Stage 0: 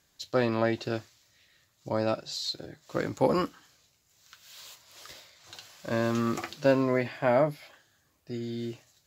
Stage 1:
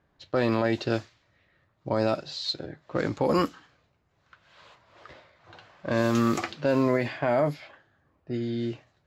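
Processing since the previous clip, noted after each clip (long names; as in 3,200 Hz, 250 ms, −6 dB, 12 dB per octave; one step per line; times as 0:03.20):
brickwall limiter −18.5 dBFS, peak gain reduction 9 dB
low-pass that shuts in the quiet parts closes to 1,300 Hz, open at −24 dBFS
level +5 dB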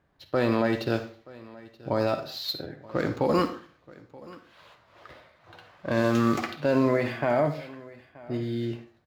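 running median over 5 samples
single-tap delay 928 ms −21.5 dB
convolution reverb RT60 0.45 s, pre-delay 48 ms, DRR 9.5 dB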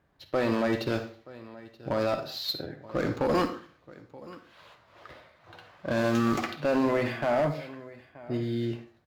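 asymmetric clip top −22.5 dBFS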